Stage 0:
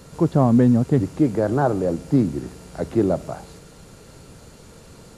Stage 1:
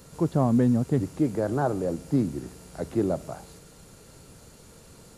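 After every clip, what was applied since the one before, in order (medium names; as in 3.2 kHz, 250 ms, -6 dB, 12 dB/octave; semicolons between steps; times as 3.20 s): treble shelf 8.2 kHz +9 dB; trim -6 dB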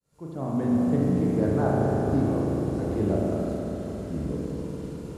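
fade-in on the opening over 0.82 s; spring tank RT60 3.8 s, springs 37 ms, chirp 60 ms, DRR -5 dB; ever faster or slower copies 155 ms, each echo -5 st, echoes 3, each echo -6 dB; trim -5 dB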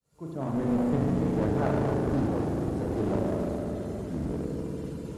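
coarse spectral quantiser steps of 15 dB; one-sided clip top -29.5 dBFS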